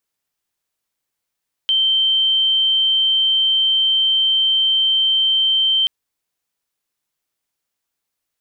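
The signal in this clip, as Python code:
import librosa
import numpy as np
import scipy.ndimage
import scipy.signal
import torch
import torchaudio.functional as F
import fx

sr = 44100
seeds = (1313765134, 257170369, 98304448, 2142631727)

y = 10.0 ** (-13.0 / 20.0) * np.sin(2.0 * np.pi * (3120.0 * (np.arange(round(4.18 * sr)) / sr)))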